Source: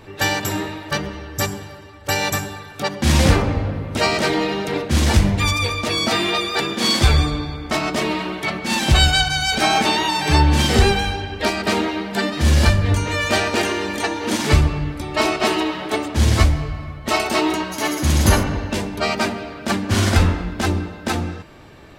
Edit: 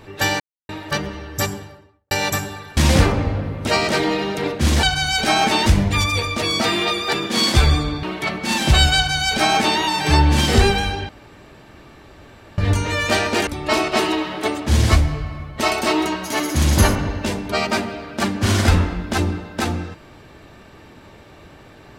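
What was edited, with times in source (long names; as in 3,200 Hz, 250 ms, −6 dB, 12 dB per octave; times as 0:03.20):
0:00.40–0:00.69: silence
0:01.47–0:02.11: fade out and dull
0:02.77–0:03.07: remove
0:07.50–0:08.24: remove
0:09.17–0:10.00: duplicate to 0:05.13
0:11.30–0:12.79: fill with room tone
0:13.68–0:14.95: remove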